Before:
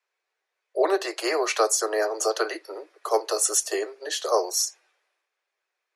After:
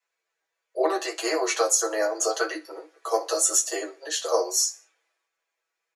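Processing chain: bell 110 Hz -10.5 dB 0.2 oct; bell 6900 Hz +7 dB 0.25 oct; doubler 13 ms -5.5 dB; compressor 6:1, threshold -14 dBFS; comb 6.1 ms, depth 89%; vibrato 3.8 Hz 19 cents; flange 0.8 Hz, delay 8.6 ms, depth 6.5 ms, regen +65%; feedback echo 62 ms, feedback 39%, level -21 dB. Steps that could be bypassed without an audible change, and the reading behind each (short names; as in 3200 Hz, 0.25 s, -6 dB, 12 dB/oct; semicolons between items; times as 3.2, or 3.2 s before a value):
bell 110 Hz: input band starts at 290 Hz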